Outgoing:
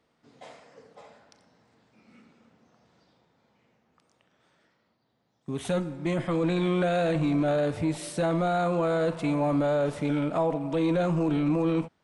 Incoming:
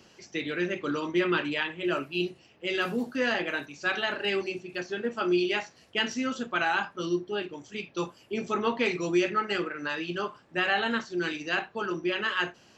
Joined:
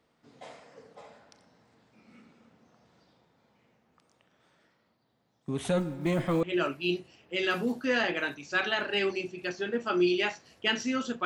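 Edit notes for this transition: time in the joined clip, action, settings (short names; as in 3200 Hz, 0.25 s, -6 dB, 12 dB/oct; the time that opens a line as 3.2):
outgoing
5.78–6.43 block floating point 7-bit
6.43 switch to incoming from 1.74 s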